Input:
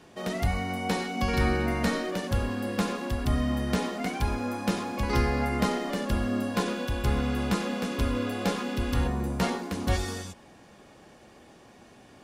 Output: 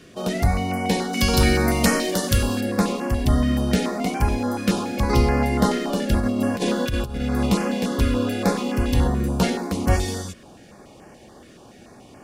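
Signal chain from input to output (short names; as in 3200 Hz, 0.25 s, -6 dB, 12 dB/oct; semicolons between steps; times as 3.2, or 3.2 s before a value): 1.13–2.61 high shelf 3200 Hz +12 dB; 6.2–7.46 negative-ratio compressor -29 dBFS, ratio -0.5; stepped notch 7 Hz 860–3700 Hz; gain +7.5 dB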